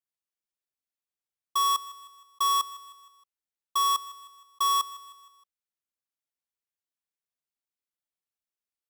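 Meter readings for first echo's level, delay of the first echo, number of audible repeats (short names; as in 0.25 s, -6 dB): -18.0 dB, 0.156 s, 3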